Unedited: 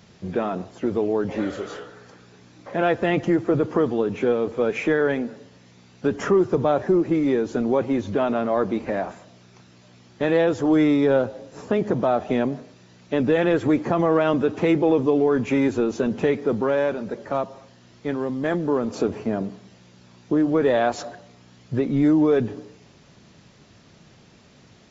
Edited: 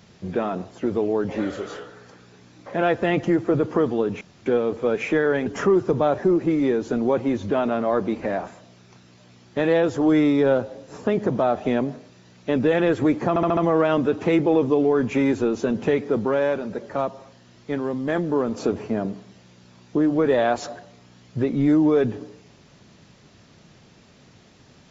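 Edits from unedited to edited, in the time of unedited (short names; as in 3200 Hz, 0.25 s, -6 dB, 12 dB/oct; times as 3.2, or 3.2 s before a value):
4.21 insert room tone 0.25 s
5.21–6.1 cut
13.93 stutter 0.07 s, 5 plays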